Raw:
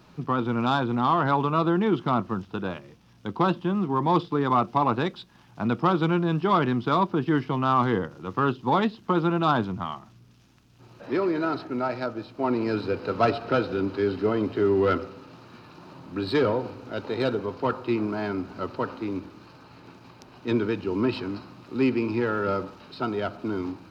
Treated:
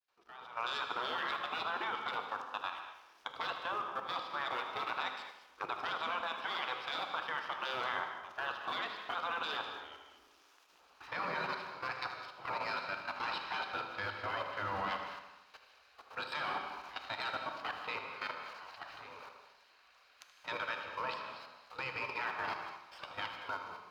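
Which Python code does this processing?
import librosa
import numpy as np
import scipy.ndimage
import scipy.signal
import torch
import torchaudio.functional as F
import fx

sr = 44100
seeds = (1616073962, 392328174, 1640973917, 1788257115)

y = fx.fade_in_head(x, sr, length_s=0.91)
y = fx.highpass(y, sr, hz=290.0, slope=6, at=(6.2, 7.45))
y = fx.spec_gate(y, sr, threshold_db=-15, keep='weak')
y = fx.low_shelf(y, sr, hz=380.0, db=-9.0)
y = fx.level_steps(y, sr, step_db=14)
y = fx.peak_eq(y, sr, hz=1100.0, db=5.0, octaves=1.4)
y = fx.echo_filtered(y, sr, ms=77, feedback_pct=62, hz=4900.0, wet_db=-10.5)
y = fx.rev_gated(y, sr, seeds[0], gate_ms=260, shape='flat', drr_db=6.0)
y = y * 10.0 ** (1.0 / 20.0)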